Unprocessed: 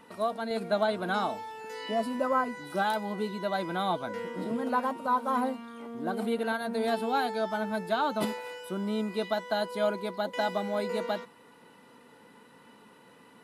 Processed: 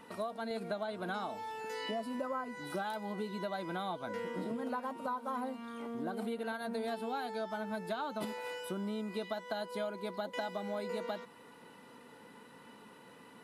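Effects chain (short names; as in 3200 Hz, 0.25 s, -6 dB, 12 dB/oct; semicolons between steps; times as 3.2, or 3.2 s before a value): compressor 6:1, threshold -35 dBFS, peak gain reduction 13 dB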